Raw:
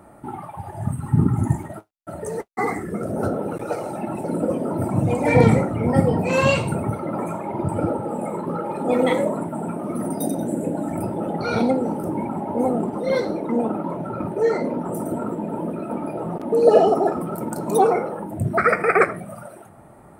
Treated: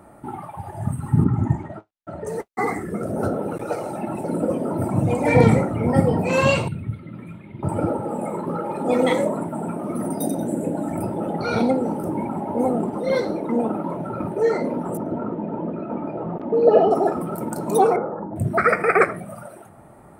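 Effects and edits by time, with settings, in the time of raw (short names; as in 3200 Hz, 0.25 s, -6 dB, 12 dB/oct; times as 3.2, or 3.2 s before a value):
1.24–2.27 air absorption 140 m
6.68–7.63 EQ curve 110 Hz 0 dB, 260 Hz -10 dB, 810 Hz -28 dB, 2000 Hz -6 dB, 3700 Hz 0 dB, 6500 Hz -27 dB, 9500 Hz -18 dB
8.86–9.27 bell 5700 Hz +7.5 dB 0.84 oct
14.97–16.91 air absorption 290 m
17.96–18.36 inverse Chebyshev low-pass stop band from 8000 Hz, stop band 80 dB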